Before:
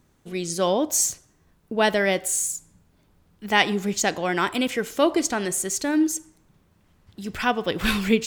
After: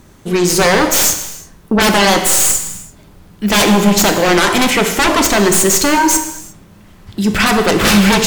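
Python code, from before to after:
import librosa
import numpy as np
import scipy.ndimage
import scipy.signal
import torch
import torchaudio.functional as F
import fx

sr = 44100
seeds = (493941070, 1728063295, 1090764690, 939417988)

y = fx.tracing_dist(x, sr, depth_ms=0.068)
y = fx.fold_sine(y, sr, drive_db=19, ceiling_db=-3.5)
y = fx.rev_gated(y, sr, seeds[0], gate_ms=380, shape='falling', drr_db=5.5)
y = y * 10.0 ** (-5.0 / 20.0)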